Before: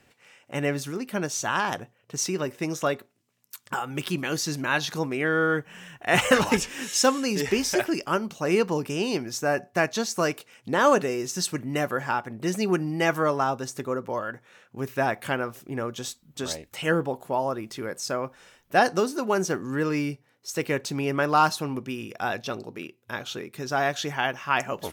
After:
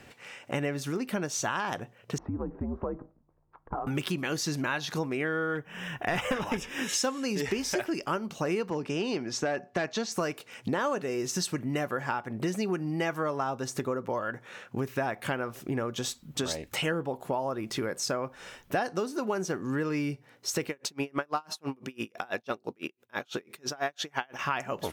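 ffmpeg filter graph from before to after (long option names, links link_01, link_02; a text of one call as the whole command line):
ffmpeg -i in.wav -filter_complex "[0:a]asettb=1/sr,asplit=3[link_01][link_02][link_03];[link_01]atrim=end=2.184[link_04];[link_02]atrim=start=2.18:end=3.87,asetpts=PTS-STARTPTS,afade=type=in:duration=0.004:curve=qsin,afade=type=out:start_time=1.686:duration=0.004:curve=qsin,lowpass=frequency=1100:width=0.5412,lowpass=frequency=1100:width=1.3066,acompressor=threshold=-43dB:ratio=2:attack=3.2:release=140:knee=1:detection=peak,afreqshift=-89[link_05];[link_03]atrim=start=3.866[link_06];[link_04][link_05]acrossfade=duration=0.004:curve1=hsin:curve2=qsin[link_07];[link_07][link_06]acrossfade=duration=0.004:curve1=qsin:curve2=hsin,asettb=1/sr,asplit=3[link_08][link_09][link_10];[link_08]atrim=end=5.554[link_11];[link_09]atrim=start=5.55:end=6.89,asetpts=PTS-STARTPTS,afade=type=in:duration=0.004:curve=qsin,afade=type=out:start_time=1.336:duration=0.004:curve=qsin,equalizer=frequency=7500:width=0.97:gain=-6,aeval=exprs='clip(val(0),-1,0.1)':channel_layout=same,asuperstop=centerf=4300:order=12:qfactor=6.6[link_12];[link_10]atrim=start=6.886[link_13];[link_11][link_12]acrossfade=duration=0.004:curve1=hsin:curve2=qsin[link_14];[link_14][link_13]acrossfade=duration=0.004:curve1=qsin:curve2=hsin,asettb=1/sr,asplit=3[link_15][link_16][link_17];[link_15]atrim=end=8.704[link_18];[link_16]atrim=start=8.7:end=10.12,asetpts=PTS-STARTPTS,afade=type=in:duration=0.004:curve=qsin,afade=type=out:start_time=1.416:duration=0.004:curve=qsin,asoftclip=type=hard:threshold=-18.5dB,highpass=130,lowpass=6100[link_19];[link_17]atrim=start=10.116[link_20];[link_18][link_19]acrossfade=duration=0.004:curve1=hsin:curve2=qsin[link_21];[link_21][link_20]acrossfade=duration=0.004:curve1=qsin:curve2=hsin,asettb=1/sr,asplit=3[link_22][link_23][link_24];[link_22]atrim=end=20.694[link_25];[link_23]atrim=start=20.69:end=24.39,asetpts=PTS-STARTPTS,afade=type=in:duration=0.004:curve=qsin,afade=type=out:start_time=3.696:duration=0.004:curve=qsin,deesser=0.35,equalizer=frequency=95:width=0.86:gain=-10,aeval=exprs='val(0)*pow(10,-36*(0.5-0.5*cos(2*PI*6*n/s))/20)':channel_layout=same[link_26];[link_24]atrim=start=24.386[link_27];[link_25][link_26]acrossfade=duration=0.004:curve1=hsin:curve2=qsin[link_28];[link_28][link_27]acrossfade=duration=0.004:curve1=qsin:curve2=hsin,highshelf=frequency=5700:gain=-5,acompressor=threshold=-38dB:ratio=5,volume=9dB" out.wav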